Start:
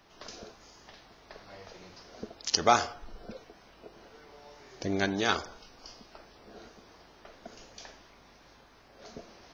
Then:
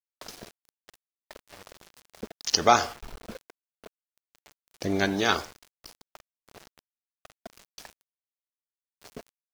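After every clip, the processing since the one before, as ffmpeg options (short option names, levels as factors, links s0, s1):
-af "aeval=exprs='val(0)*gte(abs(val(0)),0.00708)':c=same,volume=1.5"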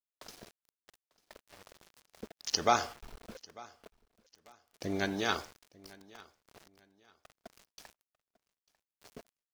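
-af "aecho=1:1:896|1792:0.075|0.021,volume=0.422"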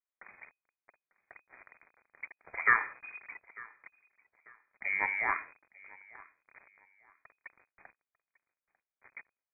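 -af "lowpass=f=2100:t=q:w=0.5098,lowpass=f=2100:t=q:w=0.6013,lowpass=f=2100:t=q:w=0.9,lowpass=f=2100:t=q:w=2.563,afreqshift=-2500,volume=1.19"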